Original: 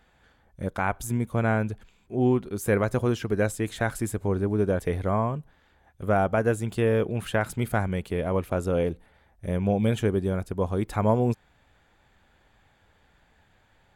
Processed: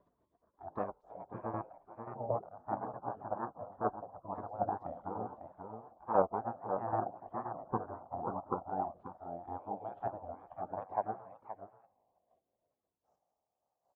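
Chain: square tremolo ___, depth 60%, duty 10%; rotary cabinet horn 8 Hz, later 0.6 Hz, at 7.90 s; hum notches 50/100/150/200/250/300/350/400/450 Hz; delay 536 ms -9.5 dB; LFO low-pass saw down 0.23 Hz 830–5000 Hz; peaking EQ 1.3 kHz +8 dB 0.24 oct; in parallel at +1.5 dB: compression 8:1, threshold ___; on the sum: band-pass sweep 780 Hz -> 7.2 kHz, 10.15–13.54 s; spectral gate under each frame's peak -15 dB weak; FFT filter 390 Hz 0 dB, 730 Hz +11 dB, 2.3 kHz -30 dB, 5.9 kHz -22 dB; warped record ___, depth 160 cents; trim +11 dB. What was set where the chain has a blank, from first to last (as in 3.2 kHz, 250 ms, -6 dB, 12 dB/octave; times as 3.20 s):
1.3 Hz, -43 dBFS, 45 rpm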